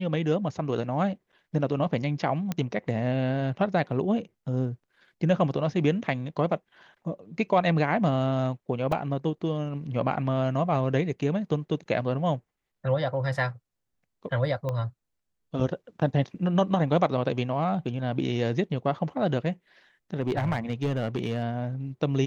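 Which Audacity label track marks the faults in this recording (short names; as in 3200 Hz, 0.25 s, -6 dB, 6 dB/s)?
2.520000	2.520000	pop -15 dBFS
8.920000	8.920000	gap 3.5 ms
14.690000	14.690000	pop -19 dBFS
20.200000	21.440000	clipped -21 dBFS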